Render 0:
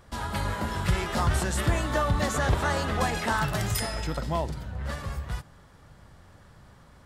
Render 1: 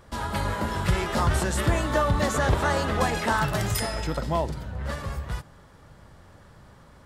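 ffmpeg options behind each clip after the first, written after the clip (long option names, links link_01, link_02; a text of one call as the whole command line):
ffmpeg -i in.wav -af "equalizer=frequency=510:width=0.55:gain=3,bandreject=frequency=730:width=23,volume=1dB" out.wav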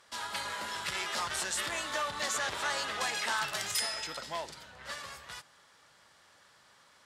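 ffmpeg -i in.wav -af "asoftclip=type=tanh:threshold=-16.5dB,bandpass=frequency=4900:width_type=q:width=0.59:csg=0,volume=2dB" out.wav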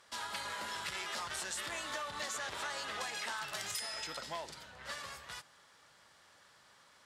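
ffmpeg -i in.wav -af "acompressor=threshold=-35dB:ratio=6,volume=-1.5dB" out.wav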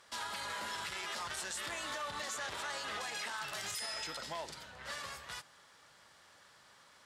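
ffmpeg -i in.wav -af "alimiter=level_in=8dB:limit=-24dB:level=0:latency=1:release=25,volume=-8dB,volume=1.5dB" out.wav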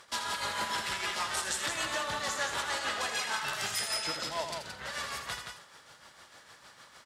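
ffmpeg -i in.wav -filter_complex "[0:a]tremolo=f=6.6:d=0.66,asplit=2[link_01][link_02];[link_02]aecho=0:1:81.63|172:0.398|0.501[link_03];[link_01][link_03]amix=inputs=2:normalize=0,volume=8.5dB" out.wav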